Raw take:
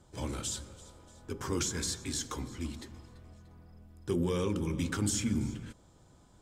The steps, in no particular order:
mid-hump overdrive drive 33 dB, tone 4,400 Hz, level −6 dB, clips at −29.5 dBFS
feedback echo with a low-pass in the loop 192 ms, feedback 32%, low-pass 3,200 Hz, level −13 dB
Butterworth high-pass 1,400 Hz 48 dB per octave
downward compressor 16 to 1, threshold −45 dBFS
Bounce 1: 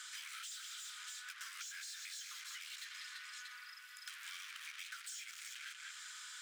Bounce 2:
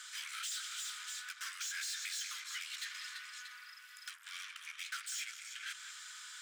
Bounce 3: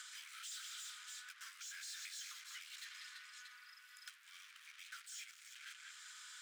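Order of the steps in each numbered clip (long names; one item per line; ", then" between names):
feedback echo with a low-pass in the loop, then mid-hump overdrive, then Butterworth high-pass, then downward compressor
downward compressor, then feedback echo with a low-pass in the loop, then mid-hump overdrive, then Butterworth high-pass
feedback echo with a low-pass in the loop, then mid-hump overdrive, then downward compressor, then Butterworth high-pass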